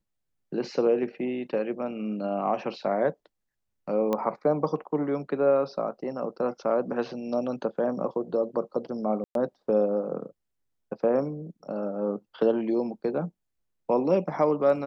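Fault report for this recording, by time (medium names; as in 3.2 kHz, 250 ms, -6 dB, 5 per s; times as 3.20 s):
4.13 s: pop -15 dBFS
9.24–9.35 s: dropout 112 ms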